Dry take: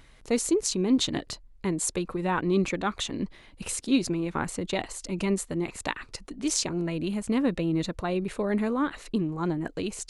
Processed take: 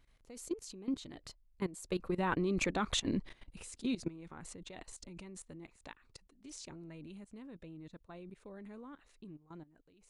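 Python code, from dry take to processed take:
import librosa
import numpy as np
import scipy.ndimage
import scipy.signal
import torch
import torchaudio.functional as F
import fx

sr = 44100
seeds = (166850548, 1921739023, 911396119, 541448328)

y = fx.doppler_pass(x, sr, speed_mps=9, closest_m=4.5, pass_at_s=2.84)
y = fx.low_shelf(y, sr, hz=80.0, db=5.0)
y = fx.level_steps(y, sr, step_db=17)
y = y * 10.0 ** (2.0 / 20.0)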